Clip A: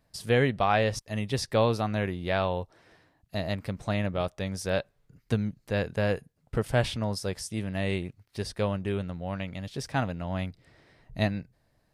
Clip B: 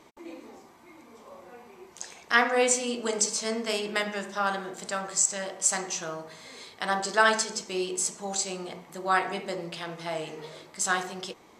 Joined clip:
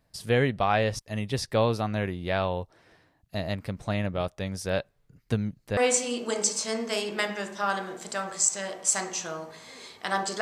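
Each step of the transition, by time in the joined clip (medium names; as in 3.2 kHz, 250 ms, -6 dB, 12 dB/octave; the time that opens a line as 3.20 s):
clip A
5.77 s: go over to clip B from 2.54 s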